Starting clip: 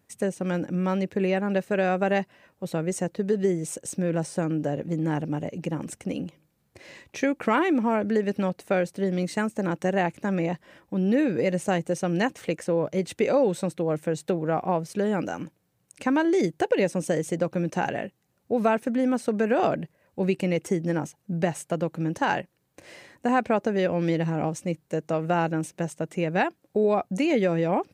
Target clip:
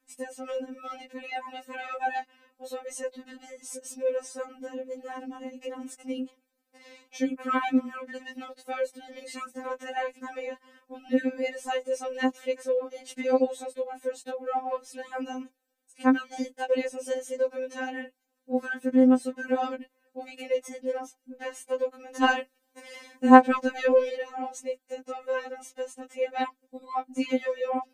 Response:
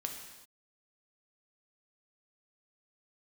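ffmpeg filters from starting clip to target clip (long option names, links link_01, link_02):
-filter_complex "[0:a]asplit=3[link_01][link_02][link_03];[link_01]afade=type=out:start_time=22.15:duration=0.02[link_04];[link_02]acontrast=68,afade=type=in:start_time=22.15:duration=0.02,afade=type=out:start_time=24.07:duration=0.02[link_05];[link_03]afade=type=in:start_time=24.07:duration=0.02[link_06];[link_04][link_05][link_06]amix=inputs=3:normalize=0,afftfilt=real='re*3.46*eq(mod(b,12),0)':imag='im*3.46*eq(mod(b,12),0)':win_size=2048:overlap=0.75,volume=-2.5dB"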